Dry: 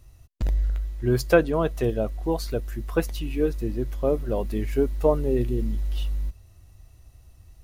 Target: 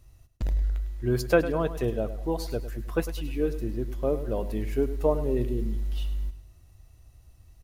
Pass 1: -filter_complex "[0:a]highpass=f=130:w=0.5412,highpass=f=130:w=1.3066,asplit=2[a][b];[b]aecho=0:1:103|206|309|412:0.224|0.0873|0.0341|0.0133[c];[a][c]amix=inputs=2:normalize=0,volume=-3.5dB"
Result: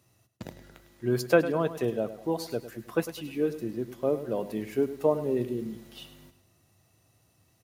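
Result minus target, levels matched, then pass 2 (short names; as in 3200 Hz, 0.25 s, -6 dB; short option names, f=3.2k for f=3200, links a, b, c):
125 Hz band -6.0 dB
-filter_complex "[0:a]asplit=2[a][b];[b]aecho=0:1:103|206|309|412:0.224|0.0873|0.0341|0.0133[c];[a][c]amix=inputs=2:normalize=0,volume=-3.5dB"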